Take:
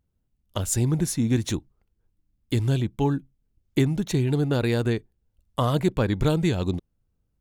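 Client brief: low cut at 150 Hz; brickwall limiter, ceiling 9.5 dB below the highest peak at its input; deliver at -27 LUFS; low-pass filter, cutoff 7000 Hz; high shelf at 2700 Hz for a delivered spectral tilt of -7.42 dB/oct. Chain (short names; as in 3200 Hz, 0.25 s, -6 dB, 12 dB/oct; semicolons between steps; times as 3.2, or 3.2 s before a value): HPF 150 Hz; LPF 7000 Hz; high shelf 2700 Hz -6.5 dB; gain +4 dB; limiter -16 dBFS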